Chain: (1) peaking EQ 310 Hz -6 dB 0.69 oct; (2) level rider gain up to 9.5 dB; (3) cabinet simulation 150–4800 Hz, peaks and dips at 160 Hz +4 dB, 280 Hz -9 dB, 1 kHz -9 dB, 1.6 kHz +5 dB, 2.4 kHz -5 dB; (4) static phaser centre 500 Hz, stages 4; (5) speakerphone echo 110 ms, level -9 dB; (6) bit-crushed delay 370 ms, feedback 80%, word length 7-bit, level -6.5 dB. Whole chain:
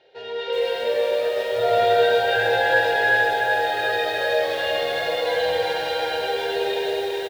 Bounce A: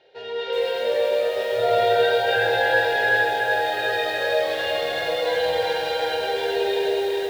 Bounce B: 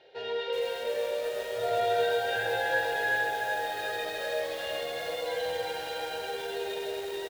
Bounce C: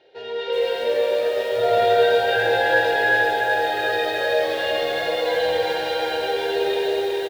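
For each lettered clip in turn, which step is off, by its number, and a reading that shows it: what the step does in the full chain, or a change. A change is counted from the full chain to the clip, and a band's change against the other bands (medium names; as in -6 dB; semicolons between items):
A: 5, momentary loudness spread change -1 LU; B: 2, 8 kHz band +7.0 dB; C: 1, 250 Hz band +4.0 dB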